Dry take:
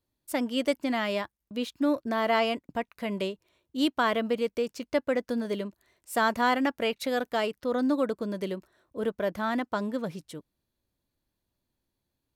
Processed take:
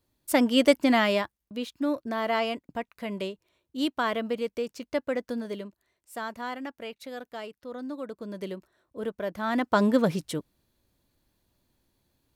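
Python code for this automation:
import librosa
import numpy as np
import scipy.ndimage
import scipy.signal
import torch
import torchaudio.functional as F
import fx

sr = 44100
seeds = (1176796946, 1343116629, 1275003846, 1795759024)

y = fx.gain(x, sr, db=fx.line((0.96, 7.0), (1.62, -2.0), (5.3, -2.0), (6.27, -10.5), (7.98, -10.5), (8.43, -3.0), (9.35, -3.0), (9.83, 9.5)))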